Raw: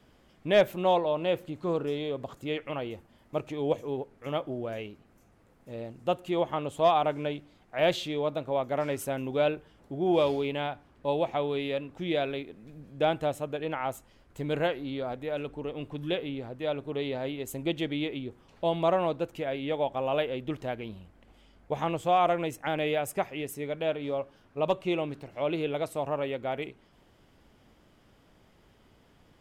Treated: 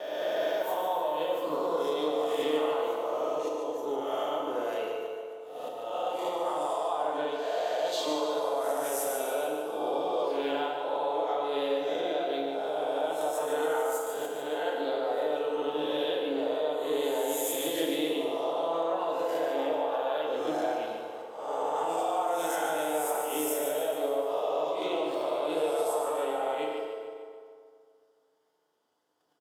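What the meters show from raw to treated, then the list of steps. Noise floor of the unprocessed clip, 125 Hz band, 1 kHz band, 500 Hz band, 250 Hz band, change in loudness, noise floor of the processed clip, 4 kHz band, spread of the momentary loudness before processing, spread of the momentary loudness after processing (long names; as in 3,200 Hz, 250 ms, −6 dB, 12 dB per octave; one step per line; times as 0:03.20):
−62 dBFS, below −15 dB, +1.5 dB, +1.0 dB, −3.0 dB, 0.0 dB, −63 dBFS, +0.5 dB, 12 LU, 4 LU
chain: peak hold with a rise ahead of every peak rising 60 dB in 1.36 s
noise gate −53 dBFS, range −20 dB
high-pass filter 570 Hz 12 dB per octave
reverb reduction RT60 0.69 s
parametric band 2,300 Hz −13.5 dB 0.75 octaves
in parallel at −0.5 dB: speech leveller within 4 dB 0.5 s
on the sum: brickwall limiter −19.5 dBFS, peak gain reduction 10.5 dB
downward compressor 8 to 1, threshold −30 dBFS, peak gain reduction 7 dB
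volume swells 281 ms
on a send: repeating echo 147 ms, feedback 51%, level −7 dB
on the sum: feedback delay network reverb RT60 2.1 s, low-frequency decay 1×, high-frequency decay 0.65×, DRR −1.5 dB
level −1 dB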